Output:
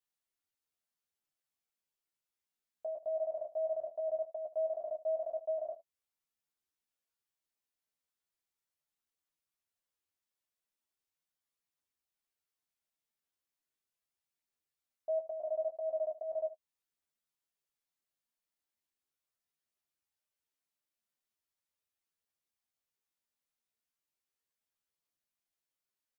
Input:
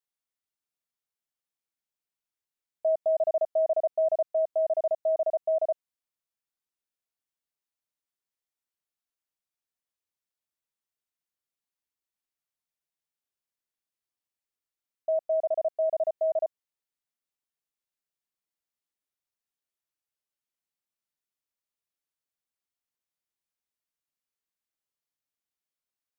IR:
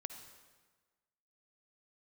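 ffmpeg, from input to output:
-filter_complex "[0:a]alimiter=level_in=5dB:limit=-24dB:level=0:latency=1:release=281,volume=-5dB,flanger=delay=8.8:depth=8.8:regen=20:speed=0.19:shape=triangular,asplit=2[a][b];[b]aecho=0:1:13|75:0.668|0.168[c];[a][c]amix=inputs=2:normalize=0,volume=1dB"

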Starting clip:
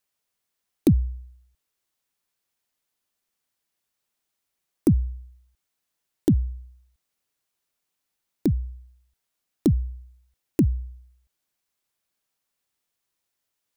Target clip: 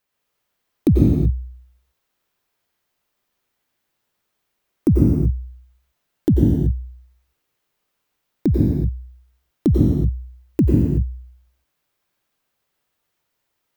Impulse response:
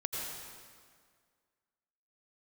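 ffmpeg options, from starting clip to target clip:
-filter_complex "[0:a]equalizer=f=9.2k:t=o:w=2.1:g=-9,asplit=2[a][b];[b]alimiter=limit=-19dB:level=0:latency=1,volume=1.5dB[c];[a][c]amix=inputs=2:normalize=0[d];[1:a]atrim=start_sample=2205,afade=t=out:st=0.41:d=0.01,atrim=end_sample=18522,asetrate=41454,aresample=44100[e];[d][e]afir=irnorm=-1:irlink=0"

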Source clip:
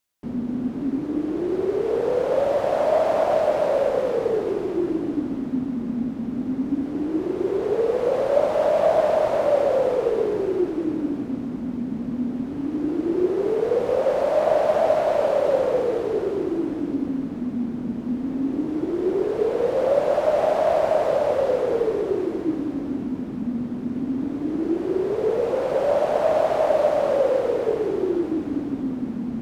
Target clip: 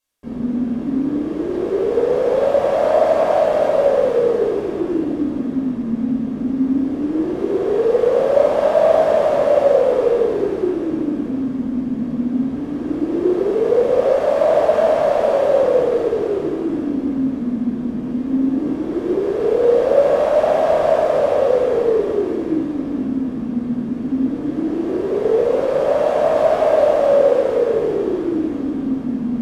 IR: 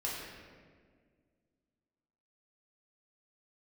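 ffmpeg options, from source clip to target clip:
-filter_complex "[1:a]atrim=start_sample=2205,atrim=end_sample=3969,asetrate=26901,aresample=44100[a];[0:a][a]afir=irnorm=-1:irlink=0,volume=-1dB"

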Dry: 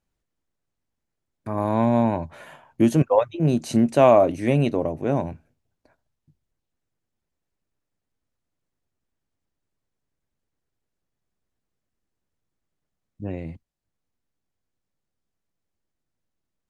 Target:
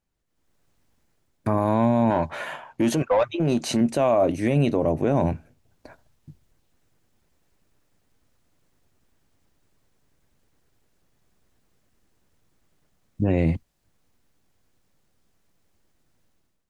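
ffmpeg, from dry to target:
-filter_complex "[0:a]dynaudnorm=f=120:g=7:m=16dB,alimiter=limit=-11dB:level=0:latency=1:release=22,asettb=1/sr,asplit=3[a][b][c];[a]atrim=end=2.104[d];[b]atrim=start=2.1:end=3.81,asetpts=PTS-STARTPTS,afade=t=in:d=0.004:c=qsin,afade=t=out:st=1.706:d=0.004:c=qsin,asplit=2[e][f];[f]highpass=f=720:p=1,volume=11dB,asoftclip=type=tanh:threshold=-11dB[g];[e][g]amix=inputs=2:normalize=0,lowpass=f=4.2k:p=1,volume=-6dB[h];[c]atrim=start=3.806[i];[d][h]acrossfade=d=0.004:c1=hsin:c2=qsin[j];[j][i]acrossfade=d=0.004:c1=qsin:c2=hsin,volume=-1dB"

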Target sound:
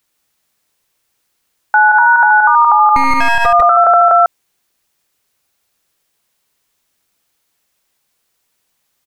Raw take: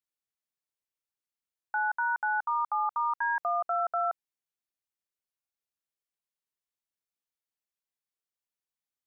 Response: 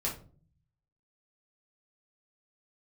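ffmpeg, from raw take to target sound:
-filter_complex "[0:a]asettb=1/sr,asplit=3[a][b][c];[a]atrim=end=2.954[d];[b]atrim=start=2.95:end=3.46,asetpts=PTS-STARTPTS,afade=t=in:d=0.004:c=qsin,afade=t=out:st=0.506:d=0.004:c=qsin,aeval=exprs='max(val(0),0)':c=same[e];[c]atrim=start=3.456[f];[d][e]acrossfade=d=0.004:c1=hsin:c2=qsin[g];[g][f]acrossfade=d=0.004:c1=qsin:c2=hsin,aecho=1:1:147:0.596,alimiter=level_in=26dB:limit=-1dB:release=50:level=0:latency=1,volume=-1dB"

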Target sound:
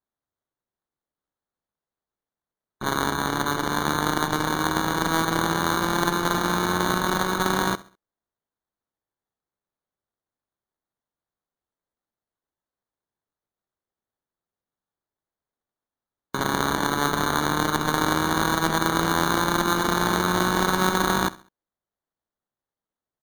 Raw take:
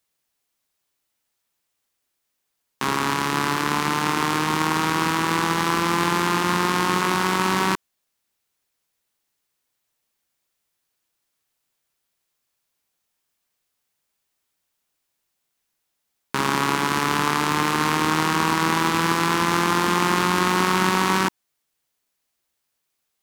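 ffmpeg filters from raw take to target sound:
-af "acrusher=samples=17:mix=1:aa=0.000001,afftdn=nr=15:nf=-40,aecho=1:1:67|134|201:0.112|0.0404|0.0145,volume=-2dB"

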